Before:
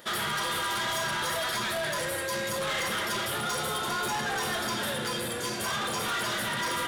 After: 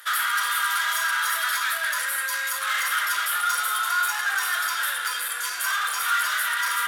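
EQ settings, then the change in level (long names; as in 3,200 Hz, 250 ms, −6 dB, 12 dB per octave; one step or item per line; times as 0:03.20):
high-pass with resonance 1,400 Hz, resonance Q 3.4
parametric band 14,000 Hz +13 dB 0.95 octaves
0.0 dB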